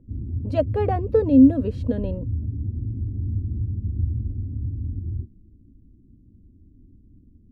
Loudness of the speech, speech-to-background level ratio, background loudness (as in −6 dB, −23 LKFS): −20.5 LKFS, 8.5 dB, −29.0 LKFS